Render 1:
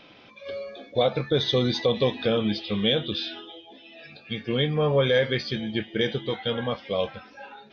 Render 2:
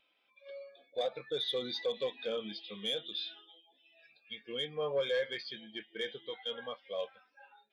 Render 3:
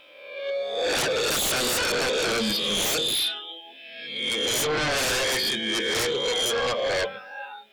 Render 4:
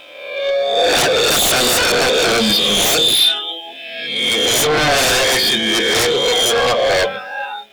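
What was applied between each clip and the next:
high-pass 1 kHz 6 dB/octave; hard clipper -24.5 dBFS, distortion -12 dB; spectral contrast expander 1.5:1
reverse spectral sustain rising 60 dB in 0.92 s; de-hum 47.21 Hz, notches 12; sine folder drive 15 dB, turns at -21.5 dBFS
waveshaping leveller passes 1; small resonant body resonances 710/3600 Hz, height 8 dB; trim +8.5 dB

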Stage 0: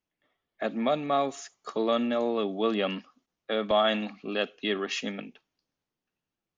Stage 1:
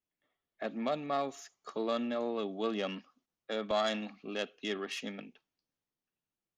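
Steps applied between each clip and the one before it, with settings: self-modulated delay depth 0.066 ms; trim -7 dB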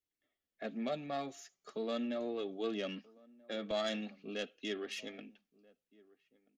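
peaking EQ 1 kHz -10 dB 0.69 oct; flange 0.4 Hz, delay 2.1 ms, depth 4.2 ms, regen -40%; echo from a far wall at 220 m, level -24 dB; trim +1 dB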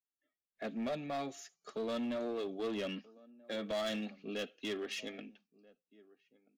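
in parallel at -5.5 dB: wavefolder -37 dBFS; on the sum: spectral noise reduction 16 dB; trim -1.5 dB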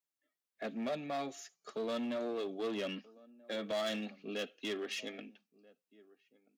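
high-pass 170 Hz 6 dB/octave; trim +1 dB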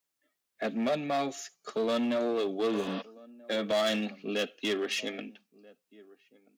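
spectral replace 2.76–2.99 s, 460–5900 Hz before; trim +8 dB

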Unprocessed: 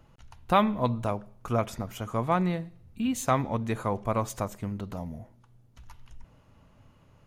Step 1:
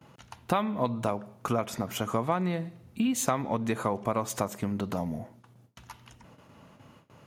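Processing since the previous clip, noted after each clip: compression 8:1, threshold -31 dBFS, peak gain reduction 15 dB; gate with hold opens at -49 dBFS; high-pass 150 Hz 12 dB/octave; trim +8 dB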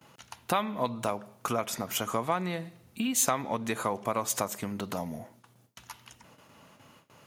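tilt EQ +2 dB/octave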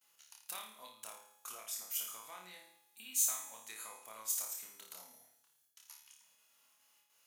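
differentiator; feedback comb 120 Hz, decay 1.4 s, harmonics all, mix 60%; flutter echo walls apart 4.7 m, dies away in 0.52 s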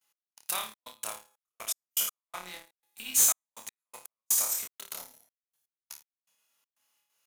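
waveshaping leveller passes 3; trance gate "x..xxx.xxxx..x.." 122 bpm -60 dB; trim +1.5 dB

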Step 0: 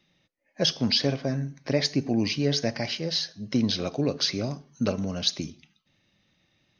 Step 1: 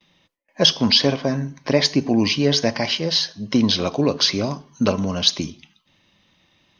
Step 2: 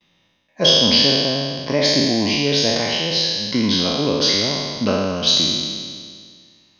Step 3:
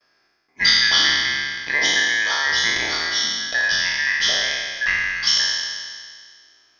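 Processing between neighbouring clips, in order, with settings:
gate with hold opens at -59 dBFS; graphic EQ with 31 bands 125 Hz -6 dB, 1 kHz +10 dB, 3.15 kHz +5 dB; trim +7 dB
spectral sustain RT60 1.93 s; trim -4 dB
four frequency bands reordered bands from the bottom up 2143; trim -2 dB

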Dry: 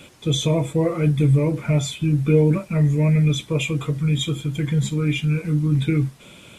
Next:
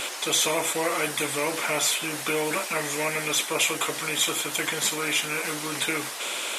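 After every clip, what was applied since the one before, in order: Bessel high-pass 680 Hz, order 4; dynamic bell 4.1 kHz, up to -4 dB, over -43 dBFS, Q 1.1; spectrum-flattening compressor 2:1; trim +6.5 dB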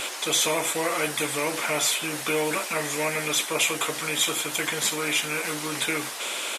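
doubling 13 ms -14 dB

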